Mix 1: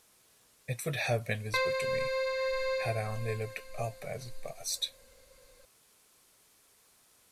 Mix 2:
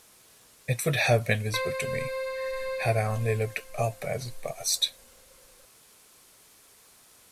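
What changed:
speech +8.0 dB; background: add air absorption 140 m

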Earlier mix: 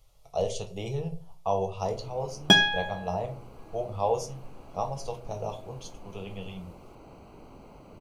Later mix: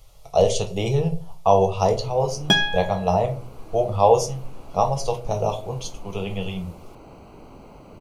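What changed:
speech +11.0 dB; first sound +5.0 dB

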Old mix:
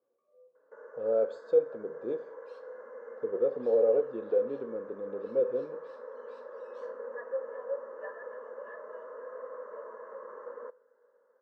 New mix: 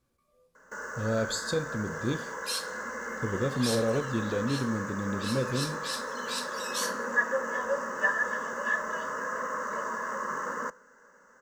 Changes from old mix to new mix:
speech -8.5 dB; master: remove ladder band-pass 530 Hz, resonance 65%

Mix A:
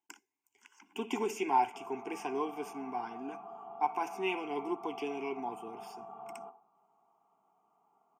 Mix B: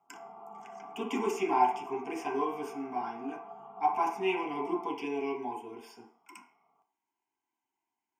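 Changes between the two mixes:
speech: send on; background: entry -1.60 s

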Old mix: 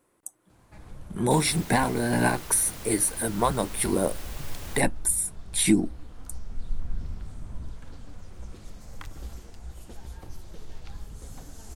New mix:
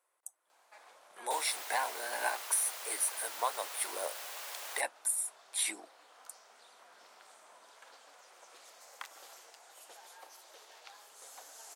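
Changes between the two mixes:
speech -7.5 dB; master: add HPF 600 Hz 24 dB/oct

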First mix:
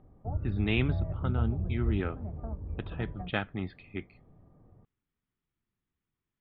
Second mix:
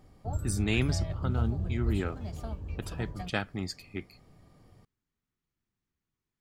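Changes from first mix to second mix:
background: remove Gaussian blur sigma 6.8 samples; master: remove steep low-pass 3700 Hz 72 dB/oct

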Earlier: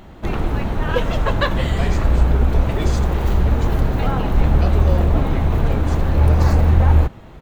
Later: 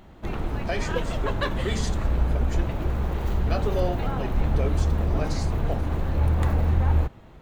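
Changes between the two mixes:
speech: entry -1.10 s; background -8.0 dB

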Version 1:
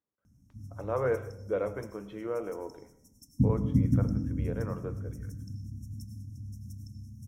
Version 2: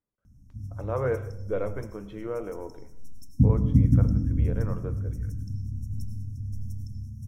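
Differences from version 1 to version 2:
speech: remove air absorption 67 m; master: remove HPF 210 Hz 6 dB/oct

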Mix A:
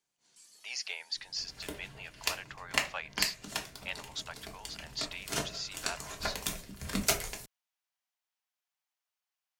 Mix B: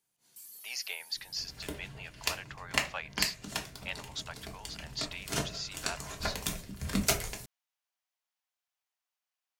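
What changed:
first sound: remove LPF 7800 Hz 24 dB/oct; master: add bell 94 Hz +6 dB 2.6 oct

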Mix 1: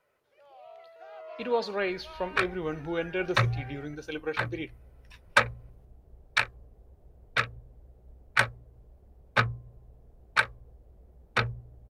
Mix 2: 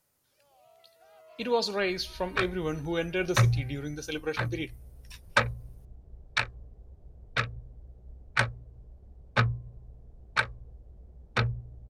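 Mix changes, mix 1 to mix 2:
first sound -11.0 dB; second sound: add tape spacing loss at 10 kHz 21 dB; master: add tone controls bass +5 dB, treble +15 dB

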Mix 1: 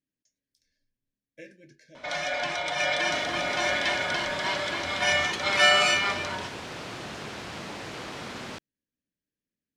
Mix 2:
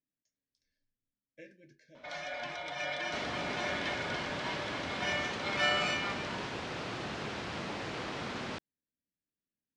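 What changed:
speech -5.5 dB; first sound -9.5 dB; master: add air absorption 77 m

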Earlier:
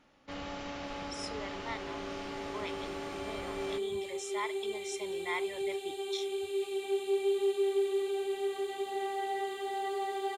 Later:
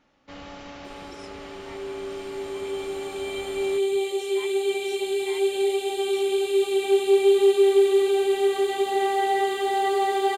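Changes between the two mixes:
speech -8.5 dB; second sound +12.0 dB

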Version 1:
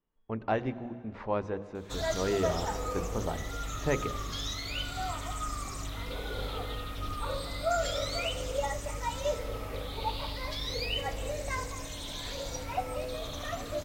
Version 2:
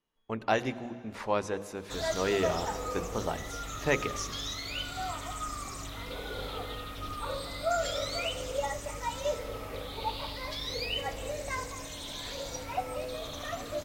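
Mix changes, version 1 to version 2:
speech: remove tape spacing loss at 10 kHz 32 dB; master: add low shelf 110 Hz -7 dB

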